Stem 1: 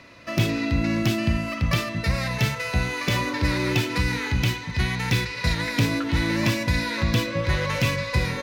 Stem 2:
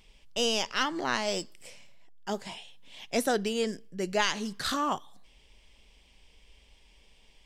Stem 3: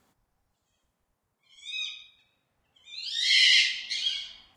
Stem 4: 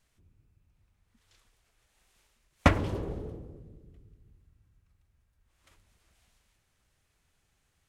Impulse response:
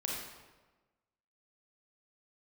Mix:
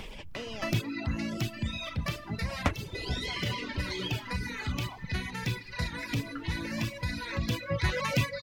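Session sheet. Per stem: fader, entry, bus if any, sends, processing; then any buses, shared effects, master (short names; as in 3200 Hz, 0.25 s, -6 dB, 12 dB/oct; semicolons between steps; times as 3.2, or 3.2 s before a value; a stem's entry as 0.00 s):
0.0 dB, 0.35 s, send -18.5 dB, reverb removal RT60 0.89 s; auto duck -15 dB, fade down 1.80 s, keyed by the second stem
-16.0 dB, 0.00 s, no send, LPF 2100 Hz 6 dB/oct; limiter -25 dBFS, peak gain reduction 10 dB; fast leveller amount 70%
-8.0 dB, 0.00 s, no send, compressor, threshold -28 dBFS, peak gain reduction 11 dB
-2.0 dB, 0.00 s, no send, dry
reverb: on, RT60 1.2 s, pre-delay 29 ms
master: reverb removal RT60 0.83 s; three-band squash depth 70%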